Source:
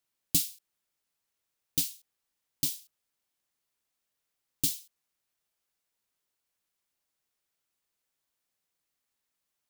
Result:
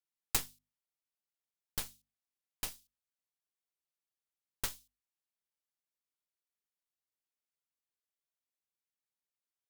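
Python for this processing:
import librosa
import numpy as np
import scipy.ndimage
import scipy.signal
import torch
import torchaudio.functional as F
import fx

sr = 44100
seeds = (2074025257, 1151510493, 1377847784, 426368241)

y = fx.cheby_harmonics(x, sr, harmonics=(3, 4), levels_db=(-8, -13), full_scale_db=-10.0)
y = fx.hum_notches(y, sr, base_hz=50, count=5)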